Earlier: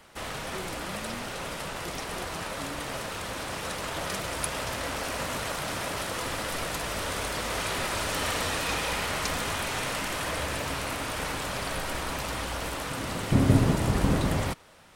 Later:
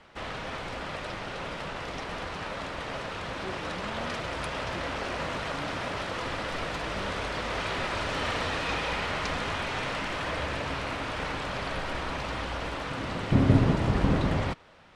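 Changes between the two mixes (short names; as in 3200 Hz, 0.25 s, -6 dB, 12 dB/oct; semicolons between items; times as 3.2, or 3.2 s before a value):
speech: entry +2.90 s; master: add LPF 3900 Hz 12 dB/oct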